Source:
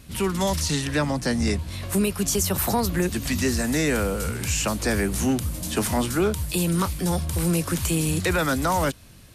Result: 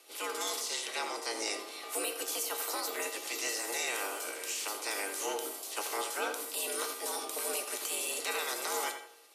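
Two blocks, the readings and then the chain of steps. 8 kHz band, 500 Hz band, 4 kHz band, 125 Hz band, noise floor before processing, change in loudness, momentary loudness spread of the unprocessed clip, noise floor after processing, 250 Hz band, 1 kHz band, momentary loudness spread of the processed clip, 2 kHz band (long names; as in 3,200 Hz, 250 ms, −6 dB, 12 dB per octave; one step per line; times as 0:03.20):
−6.5 dB, −12.0 dB, −5.5 dB, below −40 dB, −47 dBFS, −10.5 dB, 4 LU, −48 dBFS, −24.5 dB, −8.5 dB, 4 LU, −7.5 dB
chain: ceiling on every frequency bin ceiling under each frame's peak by 20 dB
tape delay 84 ms, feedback 42%, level −7 dB, low-pass 2,400 Hz
harmonic generator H 6 −40 dB, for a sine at −6.5 dBFS
high-pass filter 230 Hz 24 dB per octave
notch filter 1,600 Hz, Q 7.6
tuned comb filter 370 Hz, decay 0.46 s, harmonics all, mix 80%
frequency shifter +93 Hz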